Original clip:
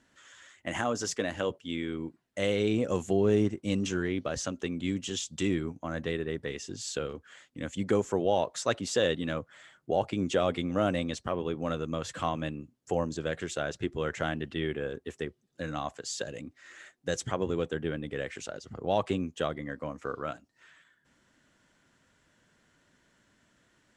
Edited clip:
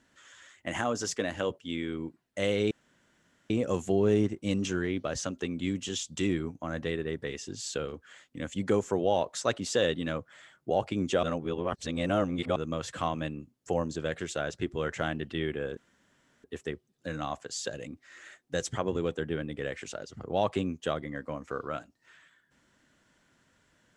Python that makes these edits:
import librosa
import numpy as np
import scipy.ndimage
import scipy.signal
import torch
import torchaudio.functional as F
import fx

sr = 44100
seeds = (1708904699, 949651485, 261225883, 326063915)

y = fx.edit(x, sr, fx.insert_room_tone(at_s=2.71, length_s=0.79),
    fx.reverse_span(start_s=10.44, length_s=1.33),
    fx.insert_room_tone(at_s=14.98, length_s=0.67), tone=tone)